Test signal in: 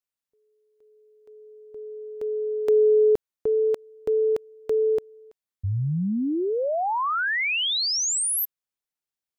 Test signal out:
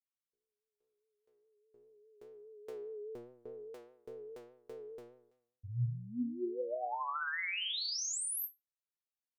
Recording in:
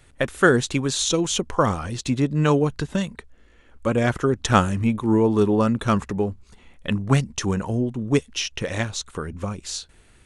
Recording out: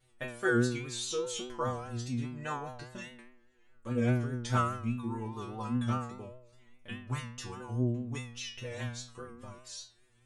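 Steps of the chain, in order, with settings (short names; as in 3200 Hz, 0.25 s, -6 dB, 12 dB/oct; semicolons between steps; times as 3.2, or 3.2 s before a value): metallic resonator 120 Hz, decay 0.73 s, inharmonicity 0.002; vibrato 4.9 Hz 57 cents; gain +1 dB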